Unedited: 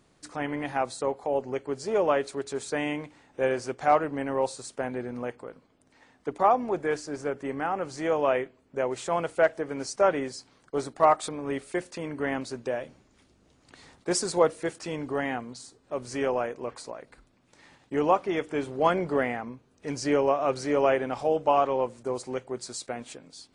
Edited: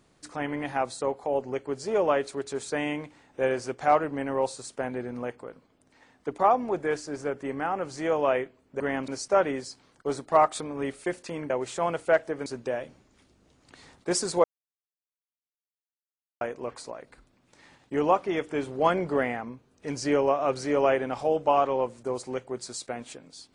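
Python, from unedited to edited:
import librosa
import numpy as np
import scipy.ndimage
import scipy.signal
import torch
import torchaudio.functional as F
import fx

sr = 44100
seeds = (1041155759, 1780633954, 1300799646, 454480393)

y = fx.edit(x, sr, fx.swap(start_s=8.8, length_s=0.96, other_s=12.18, other_length_s=0.28),
    fx.silence(start_s=14.44, length_s=1.97), tone=tone)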